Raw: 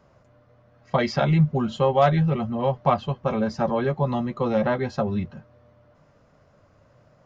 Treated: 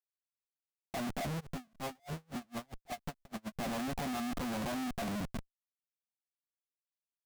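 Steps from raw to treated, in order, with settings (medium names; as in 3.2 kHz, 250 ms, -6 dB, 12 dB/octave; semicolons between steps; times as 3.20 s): compression 20:1, threshold -21 dBFS, peak gain reduction 9.5 dB; two resonant band-passes 430 Hz, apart 1.4 oct; Schmitt trigger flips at -47.5 dBFS; 1.39–3.56 s: logarithmic tremolo 2.6 Hz -> 8.9 Hz, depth 37 dB; trim +1.5 dB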